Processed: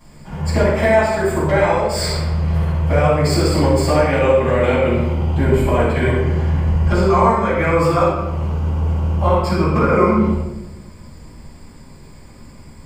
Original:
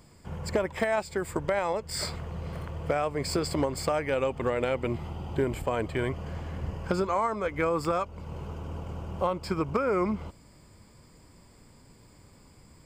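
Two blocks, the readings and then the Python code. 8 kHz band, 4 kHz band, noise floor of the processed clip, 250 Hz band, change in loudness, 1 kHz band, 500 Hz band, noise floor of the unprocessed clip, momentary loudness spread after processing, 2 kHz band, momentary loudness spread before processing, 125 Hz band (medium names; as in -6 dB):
+9.0 dB, +10.5 dB, -40 dBFS, +13.5 dB, +13.5 dB, +12.5 dB, +12.5 dB, -56 dBFS, 6 LU, +12.5 dB, 11 LU, +18.5 dB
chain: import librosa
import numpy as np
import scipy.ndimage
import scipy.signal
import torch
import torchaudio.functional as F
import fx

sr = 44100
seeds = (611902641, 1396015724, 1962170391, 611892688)

y = fx.room_shoebox(x, sr, seeds[0], volume_m3=460.0, walls='mixed', distance_m=8.2)
y = y * 10.0 ** (-4.0 / 20.0)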